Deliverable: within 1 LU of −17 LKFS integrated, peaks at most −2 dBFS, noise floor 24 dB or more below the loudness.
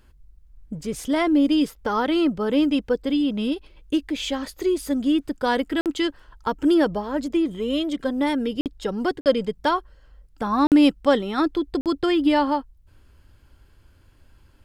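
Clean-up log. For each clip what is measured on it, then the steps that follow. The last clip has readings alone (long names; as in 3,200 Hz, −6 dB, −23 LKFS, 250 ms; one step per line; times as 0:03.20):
number of dropouts 5; longest dropout 48 ms; integrated loudness −23.0 LKFS; sample peak −5.5 dBFS; target loudness −17.0 LKFS
→ repair the gap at 0:05.81/0:08.61/0:09.21/0:10.67/0:11.81, 48 ms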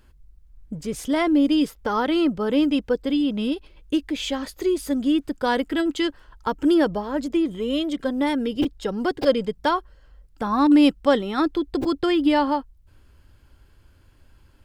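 number of dropouts 0; integrated loudness −22.5 LKFS; sample peak −5.5 dBFS; target loudness −17.0 LKFS
→ level +5.5 dB
brickwall limiter −2 dBFS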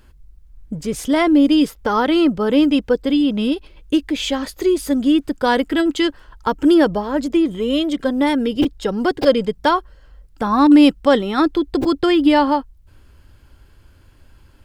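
integrated loudness −17.0 LKFS; sample peak −2.0 dBFS; background noise floor −50 dBFS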